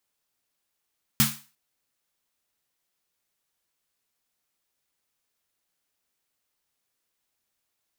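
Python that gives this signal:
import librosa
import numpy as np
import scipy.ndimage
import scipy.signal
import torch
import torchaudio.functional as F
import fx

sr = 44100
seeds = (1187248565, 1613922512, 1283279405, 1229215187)

y = fx.drum_snare(sr, seeds[0], length_s=0.35, hz=140.0, second_hz=220.0, noise_db=2, noise_from_hz=940.0, decay_s=0.28, noise_decay_s=0.36)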